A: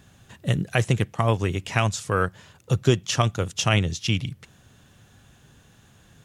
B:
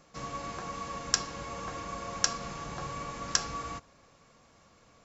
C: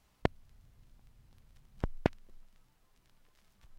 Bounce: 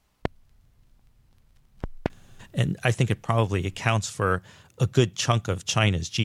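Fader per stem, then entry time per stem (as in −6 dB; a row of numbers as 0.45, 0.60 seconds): −1.0 dB, muted, +1.5 dB; 2.10 s, muted, 0.00 s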